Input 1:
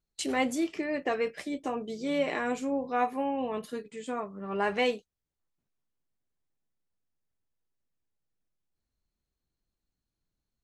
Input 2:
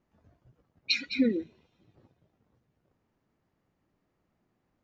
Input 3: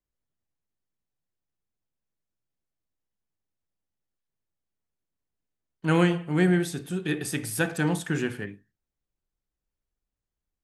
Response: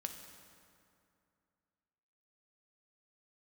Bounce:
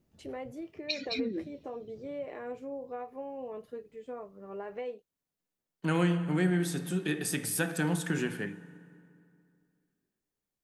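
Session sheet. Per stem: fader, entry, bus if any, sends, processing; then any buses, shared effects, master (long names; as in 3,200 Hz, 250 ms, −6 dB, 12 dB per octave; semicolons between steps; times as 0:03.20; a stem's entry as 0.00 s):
−12.5 dB, 0.00 s, no bus, no send, downward compressor, threshold −29 dBFS, peak gain reduction 8 dB; octave-band graphic EQ 500/4,000/8,000 Hz +10/−5/−12 dB
+3.0 dB, 0.00 s, bus A, send −23.5 dB, octave-band graphic EQ 125/1,000/2,000 Hz +4/−9/−6 dB; downward compressor, threshold −29 dBFS, peak gain reduction 9.5 dB
−2.5 dB, 0.00 s, bus A, send −7 dB, high-pass filter 130 Hz 24 dB per octave
bus A: 0.0 dB, high-shelf EQ 7,800 Hz +5 dB; downward compressor, threshold −31 dBFS, peak gain reduction 12 dB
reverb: on, RT60 2.5 s, pre-delay 3 ms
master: no processing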